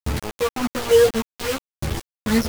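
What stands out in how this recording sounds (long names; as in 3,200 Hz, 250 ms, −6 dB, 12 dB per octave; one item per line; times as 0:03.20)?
phaser sweep stages 12, 1.8 Hz, lowest notch 220–1,000 Hz
chopped level 1.1 Hz, depth 65%, duty 20%
a quantiser's noise floor 6 bits, dither none
a shimmering, thickened sound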